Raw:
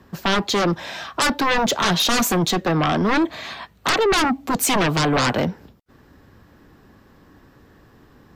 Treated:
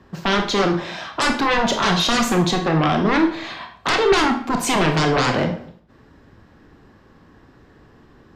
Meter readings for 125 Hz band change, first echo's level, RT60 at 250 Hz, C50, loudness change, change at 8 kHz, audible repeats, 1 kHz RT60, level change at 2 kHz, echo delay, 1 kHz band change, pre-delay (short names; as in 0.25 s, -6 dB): +1.5 dB, none, 0.60 s, 8.5 dB, +1.0 dB, -3.5 dB, none, 0.55 s, +1.0 dB, none, +1.0 dB, 24 ms